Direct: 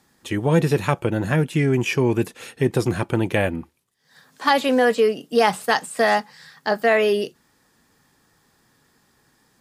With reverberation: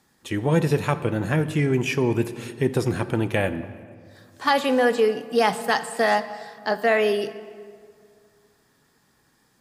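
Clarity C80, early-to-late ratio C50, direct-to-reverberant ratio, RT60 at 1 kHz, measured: 14.0 dB, 13.0 dB, 11.5 dB, 2.0 s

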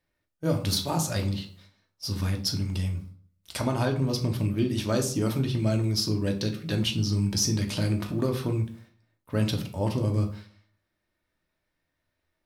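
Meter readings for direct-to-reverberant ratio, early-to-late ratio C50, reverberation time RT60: 2.5 dB, 11.0 dB, 0.50 s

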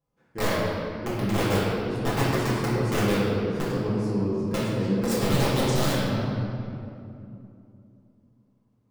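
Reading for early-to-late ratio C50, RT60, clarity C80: −3.0 dB, 2.7 s, −1.0 dB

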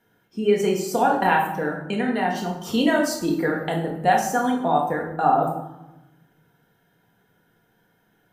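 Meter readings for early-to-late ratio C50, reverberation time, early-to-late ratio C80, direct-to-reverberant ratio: 5.5 dB, 1.0 s, 8.5 dB, −1.0 dB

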